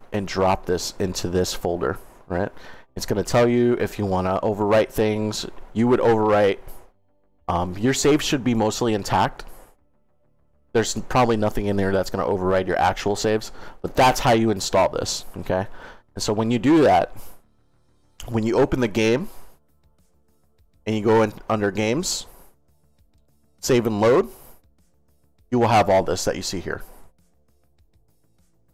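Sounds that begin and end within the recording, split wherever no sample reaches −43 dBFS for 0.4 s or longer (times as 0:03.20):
0:07.48–0:09.70
0:10.75–0:17.38
0:18.20–0:19.53
0:20.86–0:22.48
0:23.62–0:24.56
0:25.52–0:27.08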